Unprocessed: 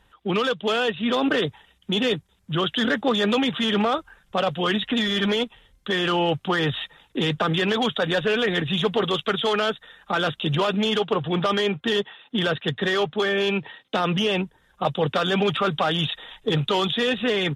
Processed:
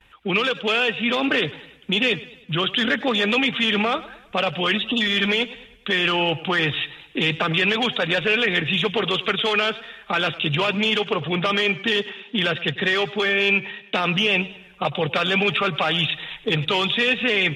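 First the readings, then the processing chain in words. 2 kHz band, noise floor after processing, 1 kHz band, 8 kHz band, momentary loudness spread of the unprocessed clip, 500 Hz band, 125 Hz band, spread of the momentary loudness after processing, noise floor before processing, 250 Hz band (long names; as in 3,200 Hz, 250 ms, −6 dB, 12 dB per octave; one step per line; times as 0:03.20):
+6.0 dB, −49 dBFS, 0.0 dB, −1.0 dB, 6 LU, −1.0 dB, −1.0 dB, 7 LU, −62 dBFS, −1.0 dB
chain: time-frequency box erased 0:04.78–0:05.01, 1,300–2,600 Hz
noise gate with hold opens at −53 dBFS
parametric band 2,400 Hz +13.5 dB 0.6 octaves
in parallel at −1 dB: downward compressor, threshold −27 dBFS, peak gain reduction 12.5 dB
on the sum: feedback echo with a swinging delay time 103 ms, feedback 48%, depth 76 cents, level −18 dB
level −3.5 dB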